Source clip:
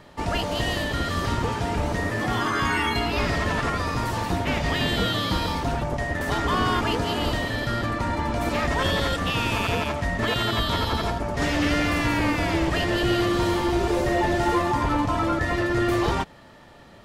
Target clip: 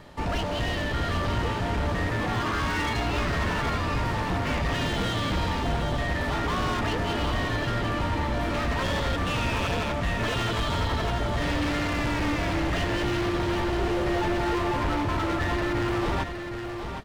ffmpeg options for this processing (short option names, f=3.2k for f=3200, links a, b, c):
-filter_complex "[0:a]acrossover=split=4100[a][b];[b]acompressor=threshold=-52dB:ratio=4:attack=1:release=60[c];[a][c]amix=inputs=2:normalize=0,asoftclip=type=hard:threshold=-26dB,lowshelf=f=96:g=5.5,asplit=2[d][e];[e]aecho=0:1:766:0.447[f];[d][f]amix=inputs=2:normalize=0"